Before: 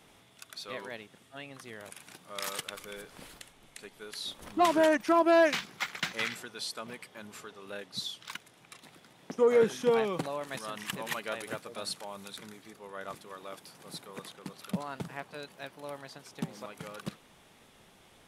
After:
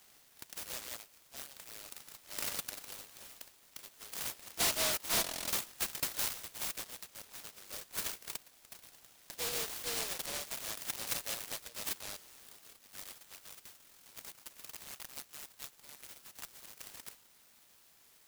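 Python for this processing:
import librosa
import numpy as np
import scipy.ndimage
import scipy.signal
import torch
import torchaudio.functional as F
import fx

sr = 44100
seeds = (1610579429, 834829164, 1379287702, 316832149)

y = fx.rattle_buzz(x, sr, strikes_db=-39.0, level_db=-30.0)
y = np.clip(y, -10.0 ** (-26.0 / 20.0), 10.0 ** (-26.0 / 20.0))
y = fx.highpass(y, sr, hz=fx.steps((0.0, 690.0), (12.77, 1400.0)), slope=24)
y = fx.buffer_glitch(y, sr, at_s=(5.22, 12.22, 13.79), block=1024, repeats=10)
y = fx.noise_mod_delay(y, sr, seeds[0], noise_hz=3900.0, depth_ms=0.35)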